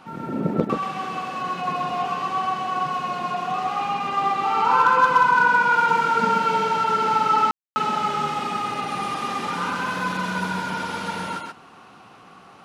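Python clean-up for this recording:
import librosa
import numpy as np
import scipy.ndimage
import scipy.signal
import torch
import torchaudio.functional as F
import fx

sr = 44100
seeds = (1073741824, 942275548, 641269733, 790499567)

y = fx.fix_declip(x, sr, threshold_db=-8.5)
y = fx.fix_ambience(y, sr, seeds[0], print_start_s=12.09, print_end_s=12.59, start_s=7.51, end_s=7.76)
y = fx.fix_echo_inverse(y, sr, delay_ms=130, level_db=-3.5)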